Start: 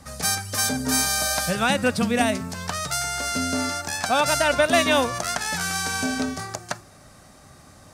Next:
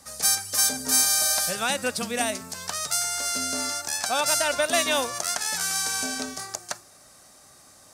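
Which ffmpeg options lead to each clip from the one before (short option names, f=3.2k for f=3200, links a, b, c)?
-af "bass=f=250:g=-10,treble=f=4k:g=9,volume=-5dB"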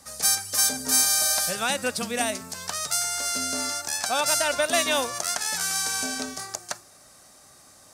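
-af anull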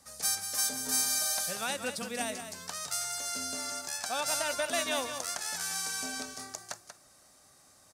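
-af "aecho=1:1:187:0.355,volume=-8.5dB"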